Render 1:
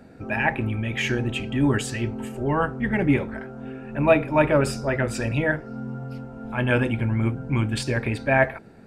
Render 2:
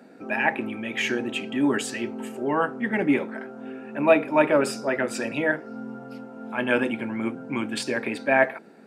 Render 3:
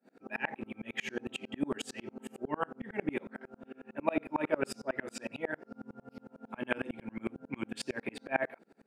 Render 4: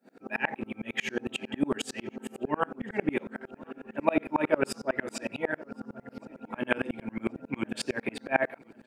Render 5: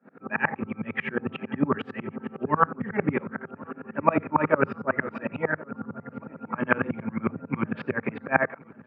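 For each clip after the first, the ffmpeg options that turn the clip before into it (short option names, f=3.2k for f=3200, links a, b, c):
-af "highpass=f=210:w=0.5412,highpass=f=210:w=1.3066"
-af "aeval=exprs='val(0)*pow(10,-34*if(lt(mod(-11*n/s,1),2*abs(-11)/1000),1-mod(-11*n/s,1)/(2*abs(-11)/1000),(mod(-11*n/s,1)-2*abs(-11)/1000)/(1-2*abs(-11)/1000))/20)':c=same,volume=-3dB"
-filter_complex "[0:a]asplit=2[a][b];[b]adelay=1073,lowpass=f=3k:p=1,volume=-23dB,asplit=2[c][d];[d]adelay=1073,lowpass=f=3k:p=1,volume=0.5,asplit=2[e][f];[f]adelay=1073,lowpass=f=3k:p=1,volume=0.5[g];[a][c][e][g]amix=inputs=4:normalize=0,volume=5.5dB"
-af "highpass=100,equalizer=f=100:t=q:w=4:g=9,equalizer=f=160:t=q:w=4:g=8,equalizer=f=330:t=q:w=4:g=-6,equalizer=f=690:t=q:w=4:g=-5,equalizer=f=1.2k:t=q:w=4:g=9,lowpass=f=2.1k:w=0.5412,lowpass=f=2.1k:w=1.3066,volume=5dB"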